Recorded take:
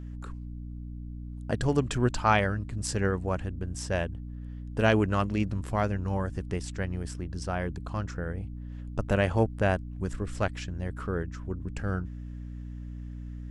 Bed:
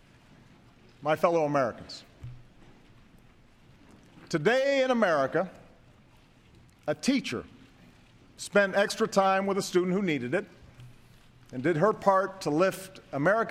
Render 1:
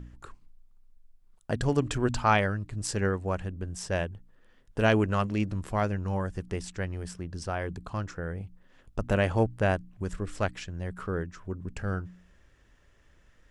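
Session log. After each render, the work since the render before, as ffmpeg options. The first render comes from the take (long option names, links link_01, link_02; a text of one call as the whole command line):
ffmpeg -i in.wav -af "bandreject=frequency=60:width_type=h:width=4,bandreject=frequency=120:width_type=h:width=4,bandreject=frequency=180:width_type=h:width=4,bandreject=frequency=240:width_type=h:width=4,bandreject=frequency=300:width_type=h:width=4" out.wav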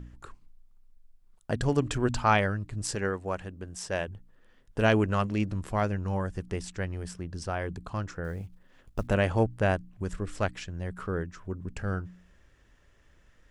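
ffmpeg -i in.wav -filter_complex "[0:a]asettb=1/sr,asplit=3[link_01][link_02][link_03];[link_01]atrim=end=2.954[link_04];[link_02]atrim=start=2.95:end=4.08,asetpts=PTS-STARTPTS,afade=type=in:duration=0.004:curve=qsin,afade=type=out:start_time=1.126:duration=0.004:curve=qsin,lowshelf=frequency=190:gain=-9[link_05];[link_03]atrim=start=4.076[link_06];[link_04][link_05]acrossfade=duration=0.004:curve1=hsin:curve2=qsin[link_07];[link_07][link_06]acrossfade=duration=0.004:curve1=qsin:curve2=hsin,asettb=1/sr,asplit=3[link_08][link_09][link_10];[link_08]atrim=end=8.244[link_11];[link_09]atrim=start=8.24:end=9.08,asetpts=PTS-STARTPTS,afade=type=in:duration=0.004:curve=qsin,afade=type=out:start_time=0.836:duration=0.004:curve=qsin,acrusher=bits=8:mode=log:mix=0:aa=0.000001[link_12];[link_10]atrim=start=9.076[link_13];[link_11][link_12]acrossfade=duration=0.004:curve1=hsin:curve2=qsin[link_14];[link_14][link_13]acrossfade=duration=0.004:curve1=qsin:curve2=hsin" out.wav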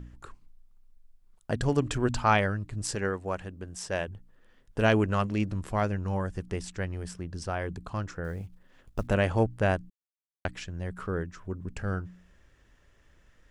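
ffmpeg -i in.wav -filter_complex "[0:a]asplit=3[link_01][link_02][link_03];[link_01]atrim=end=9.9,asetpts=PTS-STARTPTS,afade=type=out:start_time=9.896:duration=0.004:curve=hsin[link_04];[link_02]atrim=start=9.9:end=10.45,asetpts=PTS-STARTPTS,volume=0[link_05];[link_03]atrim=start=10.45,asetpts=PTS-STARTPTS,afade=type=in:duration=0.004:curve=hsin[link_06];[link_04][link_05][link_06]concat=n=3:v=0:a=1" out.wav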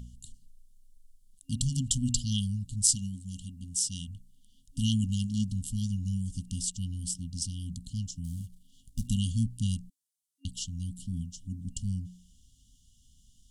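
ffmpeg -i in.wav -af "afftfilt=real='re*(1-between(b*sr/4096,270,2800))':imag='im*(1-between(b*sr/4096,270,2800))':win_size=4096:overlap=0.75,equalizer=frequency=9100:width=0.62:gain=14" out.wav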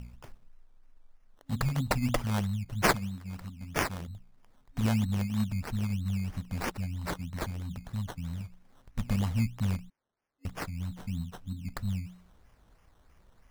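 ffmpeg -i in.wav -af "acrusher=samples=15:mix=1:aa=0.000001:lfo=1:lforange=9:lforate=3.1" out.wav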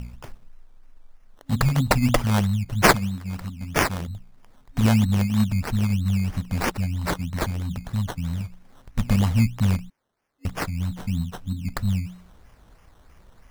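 ffmpeg -i in.wav -af "volume=9dB,alimiter=limit=-3dB:level=0:latency=1" out.wav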